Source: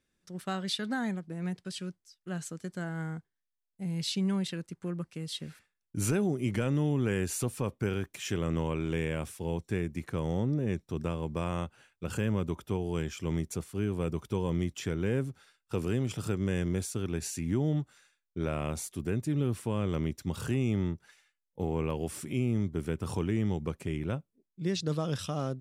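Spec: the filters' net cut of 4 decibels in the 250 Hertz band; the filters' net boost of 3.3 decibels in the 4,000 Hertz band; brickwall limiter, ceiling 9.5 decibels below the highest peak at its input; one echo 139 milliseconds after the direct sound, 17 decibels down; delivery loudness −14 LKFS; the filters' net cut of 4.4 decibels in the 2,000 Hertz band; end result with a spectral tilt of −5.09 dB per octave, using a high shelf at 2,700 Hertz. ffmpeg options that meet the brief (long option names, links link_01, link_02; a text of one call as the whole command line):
ffmpeg -i in.wav -af "equalizer=frequency=250:width_type=o:gain=-6,equalizer=frequency=2000:width_type=o:gain=-8.5,highshelf=frequency=2700:gain=3,equalizer=frequency=4000:width_type=o:gain=4,alimiter=level_in=2dB:limit=-24dB:level=0:latency=1,volume=-2dB,aecho=1:1:139:0.141,volume=23dB" out.wav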